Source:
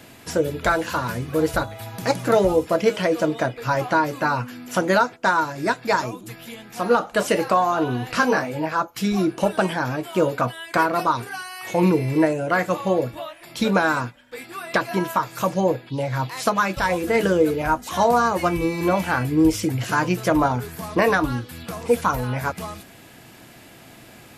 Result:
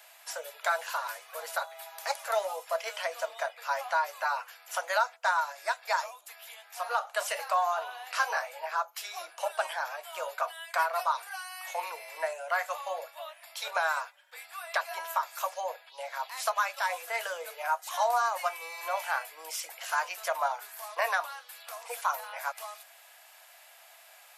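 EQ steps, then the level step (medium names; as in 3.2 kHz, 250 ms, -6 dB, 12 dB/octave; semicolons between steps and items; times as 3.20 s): steep high-pass 610 Hz 48 dB/octave; treble shelf 10 kHz +7 dB; -7.5 dB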